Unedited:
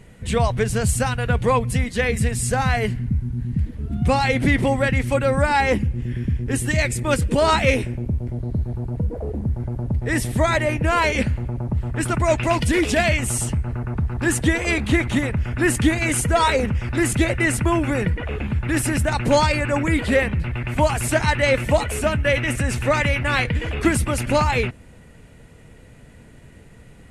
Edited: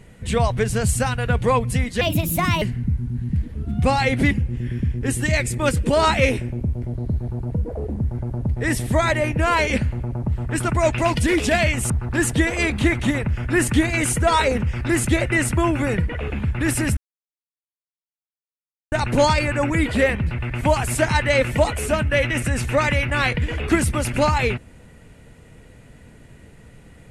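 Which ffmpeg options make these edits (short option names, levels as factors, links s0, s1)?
-filter_complex "[0:a]asplit=6[s0][s1][s2][s3][s4][s5];[s0]atrim=end=2.014[s6];[s1]atrim=start=2.01:end=2.85,asetpts=PTS-STARTPTS,asetrate=60858,aresample=44100,atrim=end_sample=26843,asetpts=PTS-STARTPTS[s7];[s2]atrim=start=2.846:end=4.542[s8];[s3]atrim=start=5.758:end=13.352[s9];[s4]atrim=start=13.978:end=19.05,asetpts=PTS-STARTPTS,afade=t=out:st=5.068:d=0.004:c=hsin,apad=pad_dur=1.95[s10];[s5]atrim=start=19.05,asetpts=PTS-STARTPTS,afade=t=in:d=0.004:c=hsin[s11];[s6][s7]acrossfade=d=0.004:c1=hsin:c2=hsin[s12];[s12][s8]acrossfade=d=0.004:c1=hsin:c2=hsin[s13];[s13][s9]acrossfade=d=0.004:c1=hsin:c2=hsin[s14];[s10][s11]concat=n=2:v=0:a=1[s15];[s14][s15]acrossfade=d=0.004:c1=hsin:c2=hsin"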